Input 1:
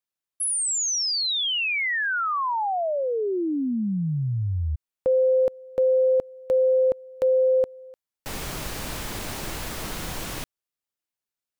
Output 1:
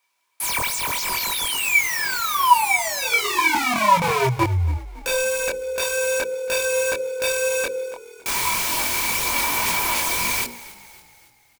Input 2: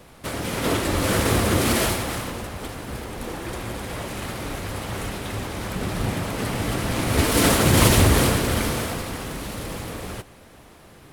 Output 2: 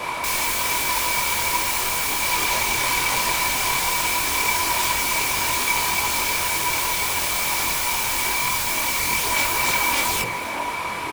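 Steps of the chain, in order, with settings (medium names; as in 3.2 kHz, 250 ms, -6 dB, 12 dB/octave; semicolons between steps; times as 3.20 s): hum notches 60/120/180/240/300/360/420/480/540 Hz; in parallel at +1 dB: compression 10:1, threshold -31 dBFS; on the sum: overdrive pedal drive 23 dB, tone 6.2 kHz, clips at -2.5 dBFS; integer overflow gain 16.5 dB; chorus voices 6, 0.86 Hz, delay 23 ms, depth 1.8 ms; small resonant body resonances 980/2300 Hz, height 18 dB, ringing for 50 ms; on a send: frequency-shifting echo 279 ms, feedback 50%, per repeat -39 Hz, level -18 dB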